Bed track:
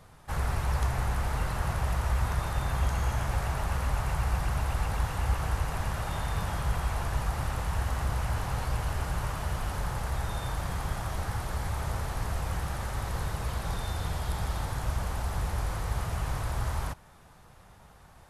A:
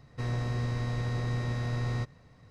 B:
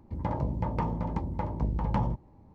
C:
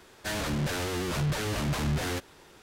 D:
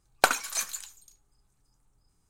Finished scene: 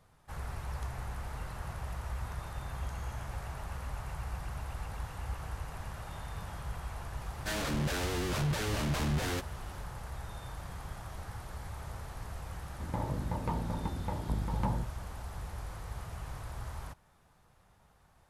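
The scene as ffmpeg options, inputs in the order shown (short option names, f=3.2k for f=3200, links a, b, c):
-filter_complex "[0:a]volume=-10.5dB[a];[3:a]atrim=end=2.62,asetpts=PTS-STARTPTS,volume=-3dB,afade=t=in:d=0.004:c=hsin,afade=t=out:st=2.616:d=0.004:c=hsin,adelay=7210[b];[2:a]atrim=end=2.54,asetpts=PTS-STARTPTS,volume=-4.5dB,afade=t=in:d=0.004:c=hsin,afade=t=out:st=2.536:d=0.004:c=hsin,adelay=12690[c];[a][b][c]amix=inputs=3:normalize=0"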